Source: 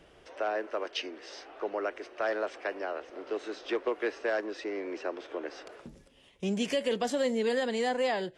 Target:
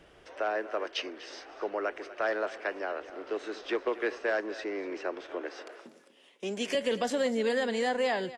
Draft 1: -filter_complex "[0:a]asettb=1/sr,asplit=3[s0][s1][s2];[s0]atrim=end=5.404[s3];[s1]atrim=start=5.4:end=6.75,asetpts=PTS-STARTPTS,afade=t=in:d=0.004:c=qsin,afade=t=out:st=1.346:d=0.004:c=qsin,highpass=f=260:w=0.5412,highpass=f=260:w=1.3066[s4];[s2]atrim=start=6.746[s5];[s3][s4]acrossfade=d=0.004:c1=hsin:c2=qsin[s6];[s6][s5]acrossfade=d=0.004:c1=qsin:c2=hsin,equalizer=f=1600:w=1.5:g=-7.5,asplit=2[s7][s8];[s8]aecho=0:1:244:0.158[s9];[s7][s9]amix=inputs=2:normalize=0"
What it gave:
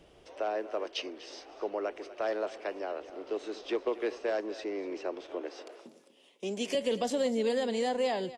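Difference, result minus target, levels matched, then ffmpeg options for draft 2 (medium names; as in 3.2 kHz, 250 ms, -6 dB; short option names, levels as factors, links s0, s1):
2 kHz band -6.5 dB
-filter_complex "[0:a]asettb=1/sr,asplit=3[s0][s1][s2];[s0]atrim=end=5.404[s3];[s1]atrim=start=5.4:end=6.75,asetpts=PTS-STARTPTS,afade=t=in:d=0.004:c=qsin,afade=t=out:st=1.346:d=0.004:c=qsin,highpass=f=260:w=0.5412,highpass=f=260:w=1.3066[s4];[s2]atrim=start=6.746[s5];[s3][s4]acrossfade=d=0.004:c1=hsin:c2=qsin[s6];[s6][s5]acrossfade=d=0.004:c1=qsin:c2=hsin,equalizer=f=1600:w=1.5:g=2.5,asplit=2[s7][s8];[s8]aecho=0:1:244:0.158[s9];[s7][s9]amix=inputs=2:normalize=0"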